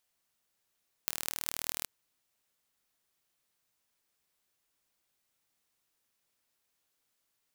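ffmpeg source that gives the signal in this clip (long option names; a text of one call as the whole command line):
ffmpeg -f lavfi -i "aevalsrc='0.75*eq(mod(n,1128),0)*(0.5+0.5*eq(mod(n,9024),0))':duration=0.79:sample_rate=44100" out.wav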